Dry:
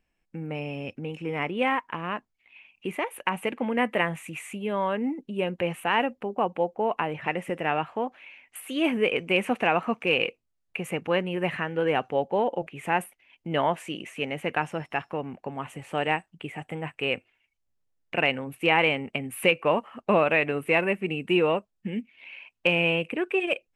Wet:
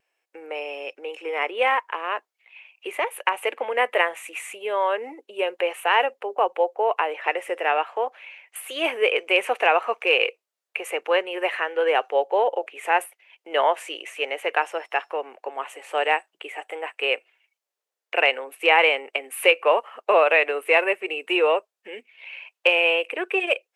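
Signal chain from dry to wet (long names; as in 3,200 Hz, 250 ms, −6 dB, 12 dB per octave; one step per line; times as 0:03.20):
Butterworth high-pass 410 Hz 36 dB per octave
pitch vibrato 0.36 Hz 7.4 cents
level +5 dB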